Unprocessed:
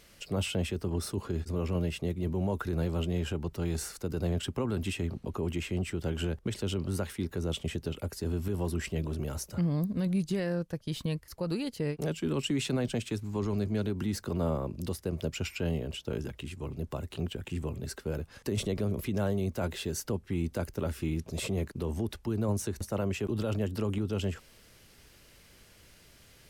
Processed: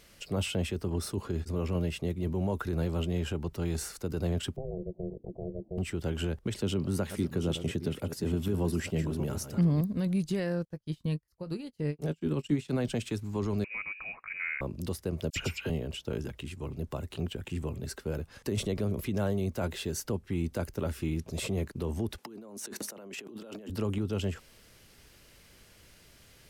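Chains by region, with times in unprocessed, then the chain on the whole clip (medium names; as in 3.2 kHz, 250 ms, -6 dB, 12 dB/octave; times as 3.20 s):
4.56–5.78 s: Gaussian low-pass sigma 23 samples + ring modulator 270 Hz
6.61–9.81 s: chunks repeated in reverse 463 ms, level -10 dB + high-pass 150 Hz + bass shelf 190 Hz +10.5 dB
10.65–12.71 s: bass shelf 340 Hz +5.5 dB + doubling 20 ms -12 dB + upward expansion 2.5:1, over -42 dBFS
13.64–14.61 s: high-pass 260 Hz + bass shelf 340 Hz -7 dB + frequency inversion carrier 2.7 kHz
15.30–15.70 s: phase dispersion lows, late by 60 ms, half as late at 1.7 kHz + three bands compressed up and down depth 100%
22.18–23.70 s: high-pass 210 Hz 24 dB/octave + compressor with a negative ratio -44 dBFS
whole clip: none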